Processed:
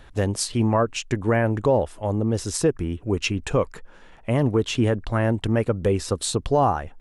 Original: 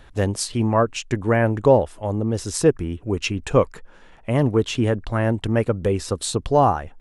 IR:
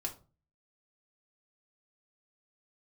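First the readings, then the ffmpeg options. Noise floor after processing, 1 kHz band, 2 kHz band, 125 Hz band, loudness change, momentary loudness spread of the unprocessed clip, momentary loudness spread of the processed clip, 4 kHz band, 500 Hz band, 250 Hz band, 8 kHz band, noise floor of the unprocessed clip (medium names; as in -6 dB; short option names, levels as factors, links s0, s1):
-48 dBFS, -3.0 dB, -1.5 dB, -1.5 dB, -2.0 dB, 7 LU, 5 LU, 0.0 dB, -3.0 dB, -1.0 dB, -0.5 dB, -48 dBFS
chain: -af "alimiter=limit=0.316:level=0:latency=1:release=112"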